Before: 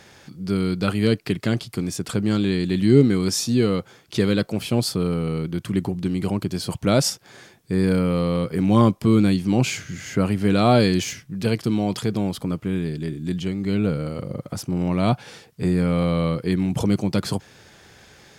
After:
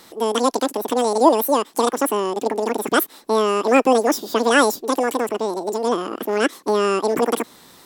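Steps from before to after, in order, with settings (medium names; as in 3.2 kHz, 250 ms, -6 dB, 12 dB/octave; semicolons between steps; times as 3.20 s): resampled via 16 kHz; speed mistake 33 rpm record played at 78 rpm; trim +2 dB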